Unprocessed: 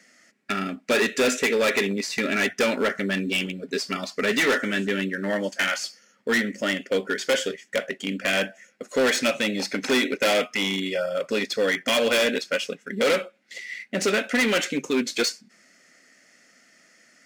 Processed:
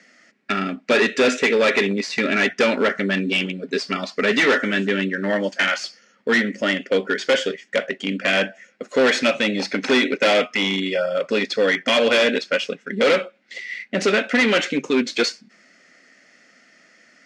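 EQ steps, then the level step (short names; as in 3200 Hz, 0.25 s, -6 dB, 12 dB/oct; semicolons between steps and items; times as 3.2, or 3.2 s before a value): BPF 120–4800 Hz; +4.5 dB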